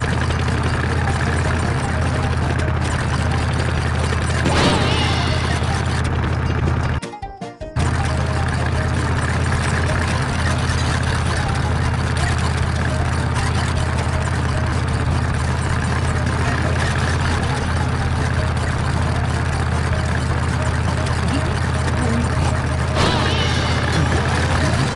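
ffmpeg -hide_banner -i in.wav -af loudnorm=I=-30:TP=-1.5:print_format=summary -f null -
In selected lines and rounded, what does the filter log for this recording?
Input Integrated:    -19.3 LUFS
Input True Peak:      -6.5 dBTP
Input LRA:             2.5 LU
Input Threshold:     -29.3 LUFS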